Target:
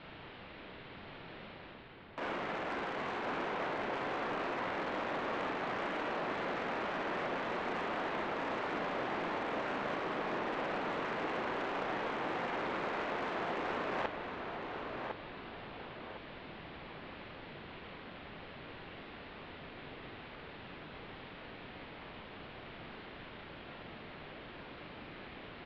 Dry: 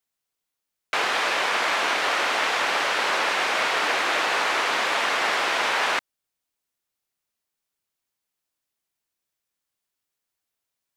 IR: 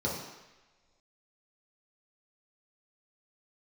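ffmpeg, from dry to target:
-filter_complex "[0:a]aeval=exprs='val(0)+0.5*0.0251*sgn(val(0))':c=same,bass=f=250:g=-5,treble=f=4k:g=14,adynamicsmooth=sensitivity=2:basefreq=1.4k,lowpass=f=9.8k:w=0.5412,lowpass=f=9.8k:w=1.3066,asoftclip=type=tanh:threshold=-15.5dB,flanger=delay=15:depth=6.5:speed=1.2,areverse,acompressor=threshold=-40dB:ratio=5,areverse,asetrate=18846,aresample=44100,asplit=2[a][b];[b]adelay=1055,lowpass=f=2.9k:p=1,volume=-4.5dB,asplit=2[c][d];[d]adelay=1055,lowpass=f=2.9k:p=1,volume=0.38,asplit=2[e][f];[f]adelay=1055,lowpass=f=2.9k:p=1,volume=0.38,asplit=2[g][h];[h]adelay=1055,lowpass=f=2.9k:p=1,volume=0.38,asplit=2[i][j];[j]adelay=1055,lowpass=f=2.9k:p=1,volume=0.38[k];[c][e][g][i][k]amix=inputs=5:normalize=0[l];[a][l]amix=inputs=2:normalize=0,volume=2dB"

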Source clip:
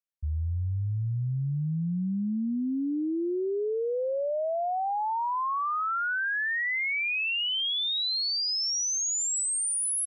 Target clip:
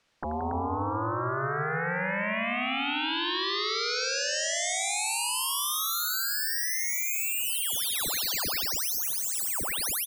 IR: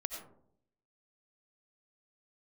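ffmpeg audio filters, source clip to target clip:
-af "lowpass=4.3k,alimiter=level_in=5.5dB:limit=-24dB:level=0:latency=1,volume=-5.5dB,acompressor=threshold=-38dB:ratio=16,aeval=exprs='0.0178*sin(PI/2*8.91*val(0)/0.0178)':c=same,aecho=1:1:81.63|174.9|279.9:0.316|0.398|0.501,volume=6dB"

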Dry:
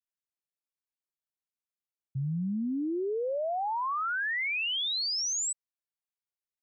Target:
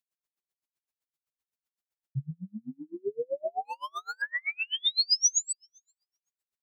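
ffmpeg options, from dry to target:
-filter_complex "[0:a]asplit=3[a][b][c];[a]afade=t=out:st=2.29:d=0.02[d];[b]agate=range=-33dB:threshold=-24dB:ratio=3:detection=peak,afade=t=in:st=2.29:d=0.02,afade=t=out:st=2.99:d=0.02[e];[c]afade=t=in:st=2.99:d=0.02[f];[d][e][f]amix=inputs=3:normalize=0,asplit=3[g][h][i];[g]afade=t=out:st=4.79:d=0.02[j];[h]aemphasis=mode=production:type=riaa,afade=t=in:st=4.79:d=0.02,afade=t=out:st=5.37:d=0.02[k];[i]afade=t=in:st=5.37:d=0.02[l];[j][k][l]amix=inputs=3:normalize=0,bandreject=f=290.4:t=h:w=4,bandreject=f=580.8:t=h:w=4,bandreject=f=871.2:t=h:w=4,bandreject=f=1.1616k:t=h:w=4,bandreject=f=1.452k:t=h:w=4,bandreject=f=1.7424k:t=h:w=4,bandreject=f=2.0328k:t=h:w=4,bandreject=f=2.3232k:t=h:w=4,bandreject=f=2.6136k:t=h:w=4,bandreject=f=2.904k:t=h:w=4,bandreject=f=3.1944k:t=h:w=4,asplit=2[m][n];[n]acompressor=threshold=-40dB:ratio=6,volume=-2dB[o];[m][o]amix=inputs=2:normalize=0,asettb=1/sr,asplit=3[p][q][r];[p]atrim=end=3.654[s];[q]atrim=start=3.65:end=4.22,asetpts=PTS-STARTPTS,afade=t=in:d=0.004:c=qsin,afade=t=out:st=0.566:d=0.004:c=qsin,asoftclip=type=hard:threshold=-33dB[t];[r]atrim=start=4.216[u];[s][t]acrossfade=d=0.004:c1=hsin:c2=qsin[v];[v][u]acrossfade=d=0.004:c1=qsin:c2=hsin,asplit=2[w][x];[x]adelay=459,lowpass=f=970:p=1,volume=-21dB,asplit=2[y][z];[z]adelay=459,lowpass=f=970:p=1,volume=0.32[aa];[w][y][aa]amix=inputs=3:normalize=0,aeval=exprs='val(0)*pow(10,-38*(0.5-0.5*cos(2*PI*7.8*n/s))/20)':c=same,volume=2.5dB"

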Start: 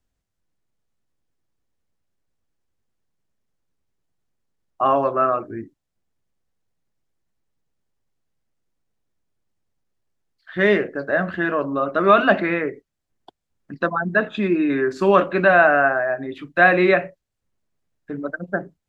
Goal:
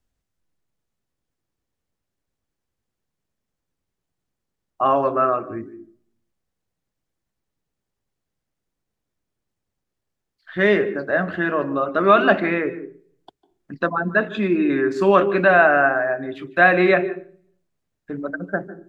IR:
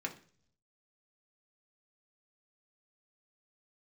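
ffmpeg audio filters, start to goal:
-filter_complex "[0:a]asplit=2[a][b];[b]equalizer=f=370:t=o:w=0.38:g=12.5[c];[1:a]atrim=start_sample=2205,lowshelf=f=210:g=8.5,adelay=149[d];[c][d]afir=irnorm=-1:irlink=0,volume=-19.5dB[e];[a][e]amix=inputs=2:normalize=0"

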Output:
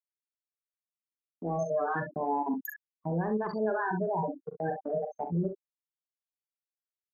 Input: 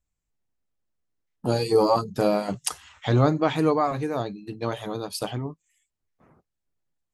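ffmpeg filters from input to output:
-af "afftfilt=real='re*gte(hypot(re,im),0.178)':imag='im*gte(hypot(re,im),0.178)':win_size=1024:overlap=0.75,agate=range=-36dB:threshold=-37dB:ratio=16:detection=peak,highpass=90,highshelf=f=8.9k:g=-2,areverse,acompressor=threshold=-30dB:ratio=20,areverse,alimiter=level_in=6.5dB:limit=-24dB:level=0:latency=1:release=33,volume=-6.5dB,acontrast=74,asetrate=60591,aresample=44100,atempo=0.727827,aecho=1:1:42|65:0.376|0.316"

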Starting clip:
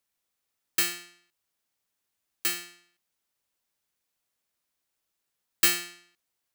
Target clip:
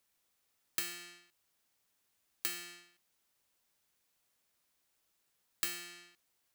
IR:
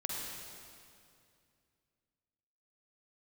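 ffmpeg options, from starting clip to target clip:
-af "acompressor=threshold=-38dB:ratio=8,volume=3.5dB"

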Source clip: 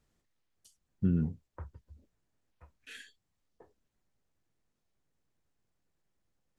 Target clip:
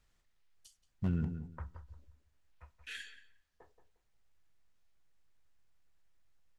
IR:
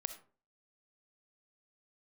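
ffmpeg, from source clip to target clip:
-filter_complex "[0:a]highshelf=f=4.7k:g=-9.5,asplit=2[a][b];[b]adelay=177,lowpass=f=1.7k:p=1,volume=-9dB,asplit=2[c][d];[d]adelay=177,lowpass=f=1.7k:p=1,volume=0.22,asplit=2[e][f];[f]adelay=177,lowpass=f=1.7k:p=1,volume=0.22[g];[a][c][e][g]amix=inputs=4:normalize=0,asplit=2[h][i];[1:a]atrim=start_sample=2205[j];[i][j]afir=irnorm=-1:irlink=0,volume=-10.5dB[k];[h][k]amix=inputs=2:normalize=0,asoftclip=type=hard:threshold=-19dB,equalizer=f=260:w=0.33:g=-15,volume=6dB"

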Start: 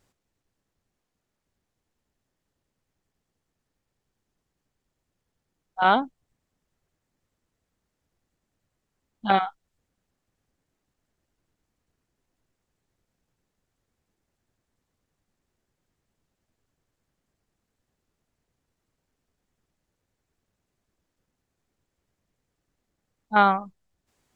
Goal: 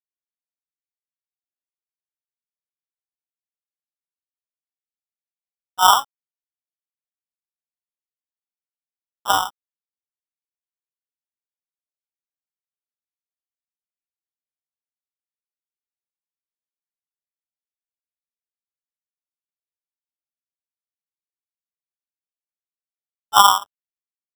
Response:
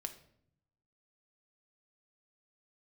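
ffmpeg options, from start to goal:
-af "highpass=f=1k:t=q:w=7.3,acrusher=samples=20:mix=1:aa=0.000001,aeval=exprs='sgn(val(0))*max(abs(val(0))-0.0075,0)':c=same,volume=-2.5dB"

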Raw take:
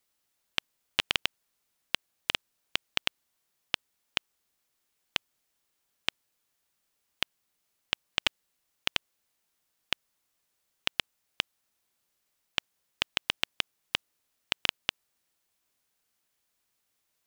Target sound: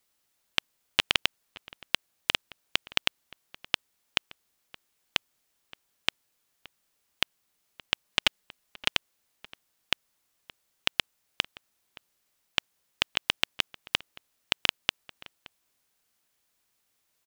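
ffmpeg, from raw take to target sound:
-filter_complex "[0:a]asettb=1/sr,asplit=3[a][b][c];[a]atrim=end=8.054[d];[b]atrim=start=8.05:end=8.94,asetpts=PTS-STARTPTS,afade=t=in:d=0.004:c=qsin,afade=t=out:st=0.886:d=0.004:c=qsin,aecho=1:1:4.8:0.34,atrim=end_sample=39249[e];[c]atrim=start=8.936[f];[d][e]acrossfade=d=0.004:c1=hsin:c2=qsin[g];[g][f]acrossfade=d=0.004:c1=qsin:c2=hsin,asplit=2[h][i];[i]adelay=571.4,volume=-19dB,highshelf=f=4k:g=-12.9[j];[h][j]amix=inputs=2:normalize=0,volume=3dB"

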